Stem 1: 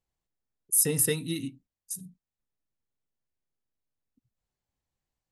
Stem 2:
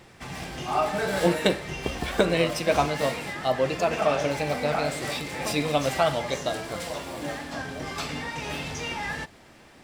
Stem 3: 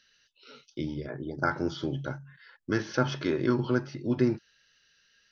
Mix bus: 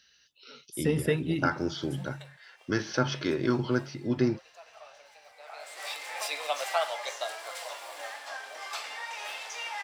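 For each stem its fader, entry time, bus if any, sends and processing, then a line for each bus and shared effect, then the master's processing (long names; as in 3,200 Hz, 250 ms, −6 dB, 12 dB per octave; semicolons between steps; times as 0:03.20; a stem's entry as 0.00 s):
+2.5 dB, 0.00 s, no send, Savitzky-Golay smoothing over 25 samples
−3.5 dB, 0.75 s, no send, high-pass filter 640 Hz 24 dB per octave; automatic ducking −21 dB, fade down 1.25 s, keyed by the third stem
−1.0 dB, 0.00 s, no send, high-shelf EQ 3,100 Hz +6.5 dB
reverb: not used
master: high-pass filter 45 Hz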